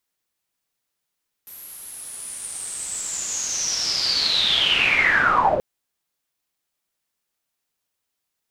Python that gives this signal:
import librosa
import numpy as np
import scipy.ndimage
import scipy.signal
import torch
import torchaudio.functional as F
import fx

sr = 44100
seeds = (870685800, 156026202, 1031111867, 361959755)

y = fx.riser_noise(sr, seeds[0], length_s=4.13, colour='white', kind='lowpass', start_hz=12000.0, end_hz=470.0, q=12.0, swell_db=33, law='linear')